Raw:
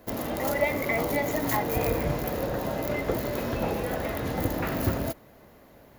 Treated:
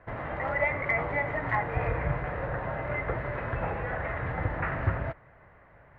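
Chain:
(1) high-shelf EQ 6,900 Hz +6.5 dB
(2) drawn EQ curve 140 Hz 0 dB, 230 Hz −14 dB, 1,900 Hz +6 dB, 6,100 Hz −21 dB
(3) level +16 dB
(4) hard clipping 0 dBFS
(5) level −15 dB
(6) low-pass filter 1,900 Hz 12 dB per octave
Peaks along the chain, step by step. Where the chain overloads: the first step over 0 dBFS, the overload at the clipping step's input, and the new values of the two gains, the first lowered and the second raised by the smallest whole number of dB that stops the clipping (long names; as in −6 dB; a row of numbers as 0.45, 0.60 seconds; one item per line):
−6.0, −12.5, +3.5, 0.0, −15.0, −15.0 dBFS
step 3, 3.5 dB
step 3 +12 dB, step 5 −11 dB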